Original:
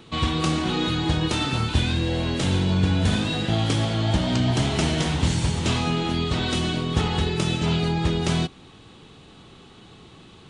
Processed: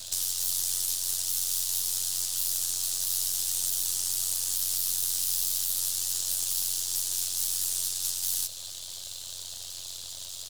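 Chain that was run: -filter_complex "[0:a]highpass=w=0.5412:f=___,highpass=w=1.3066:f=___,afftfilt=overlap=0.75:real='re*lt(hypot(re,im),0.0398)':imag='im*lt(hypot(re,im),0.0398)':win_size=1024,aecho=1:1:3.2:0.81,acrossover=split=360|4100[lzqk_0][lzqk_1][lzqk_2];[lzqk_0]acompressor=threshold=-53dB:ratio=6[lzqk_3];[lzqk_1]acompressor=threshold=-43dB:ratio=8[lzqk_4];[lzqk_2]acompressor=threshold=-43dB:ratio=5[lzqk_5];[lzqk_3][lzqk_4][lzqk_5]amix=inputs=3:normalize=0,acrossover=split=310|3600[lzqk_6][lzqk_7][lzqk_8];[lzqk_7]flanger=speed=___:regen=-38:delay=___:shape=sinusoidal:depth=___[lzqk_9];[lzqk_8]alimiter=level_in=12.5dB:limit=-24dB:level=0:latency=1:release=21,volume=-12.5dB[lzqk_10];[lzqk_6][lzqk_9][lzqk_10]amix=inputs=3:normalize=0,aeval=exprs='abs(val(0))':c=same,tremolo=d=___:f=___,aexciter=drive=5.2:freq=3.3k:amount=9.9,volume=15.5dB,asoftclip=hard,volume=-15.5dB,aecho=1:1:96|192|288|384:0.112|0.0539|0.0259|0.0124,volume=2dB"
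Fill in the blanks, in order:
180, 180, 1.4, 7.6, 8.4, 0.71, 90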